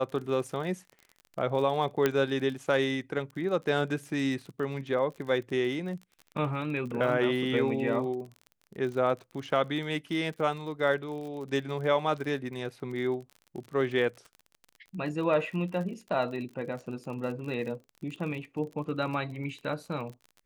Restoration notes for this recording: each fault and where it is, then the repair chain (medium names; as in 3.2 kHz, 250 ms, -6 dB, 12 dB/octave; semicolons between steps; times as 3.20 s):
crackle 42 per s -38 dBFS
2.06 s: pop -11 dBFS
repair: de-click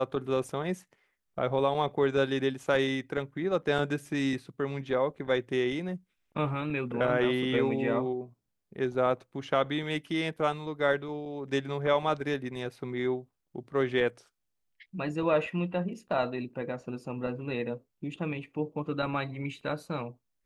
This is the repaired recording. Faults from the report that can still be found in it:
nothing left